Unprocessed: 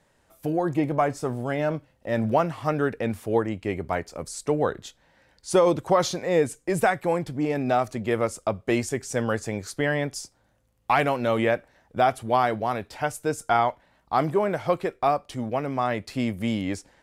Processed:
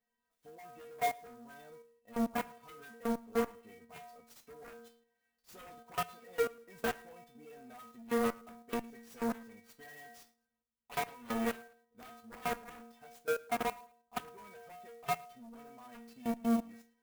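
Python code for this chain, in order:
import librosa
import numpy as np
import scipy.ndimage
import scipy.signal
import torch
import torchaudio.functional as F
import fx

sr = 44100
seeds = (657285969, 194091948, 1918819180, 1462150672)

p1 = fx.stiff_resonator(x, sr, f0_hz=230.0, decay_s=0.59, stiffness=0.008)
p2 = fx.level_steps(p1, sr, step_db=18)
p3 = p1 + (p2 * 10.0 ** (0.5 / 20.0))
p4 = fx.env_lowpass_down(p3, sr, base_hz=1900.0, full_db=-28.0)
p5 = fx.cheby_harmonics(p4, sr, harmonics=(3, 5, 7), levels_db=(-13, -34, -19), full_scale_db=-19.5)
p6 = p5 + fx.echo_feedback(p5, sr, ms=109, feedback_pct=29, wet_db=-23, dry=0)
p7 = fx.clock_jitter(p6, sr, seeds[0], jitter_ms=0.033)
y = p7 * 10.0 ** (1.0 / 20.0)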